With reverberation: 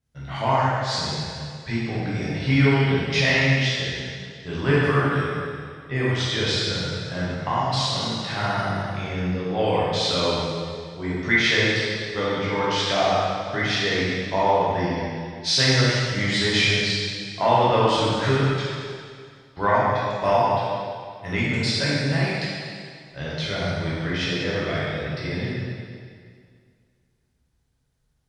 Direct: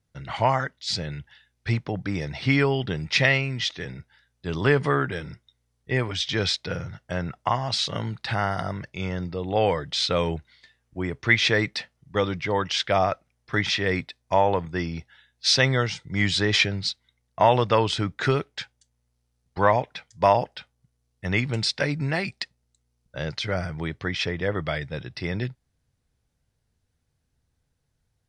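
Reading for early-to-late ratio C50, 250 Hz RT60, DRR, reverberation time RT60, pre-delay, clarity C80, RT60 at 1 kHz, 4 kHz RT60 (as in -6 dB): -3.5 dB, 2.1 s, -8.5 dB, 2.1 s, 6 ms, -1.0 dB, 2.1 s, 2.0 s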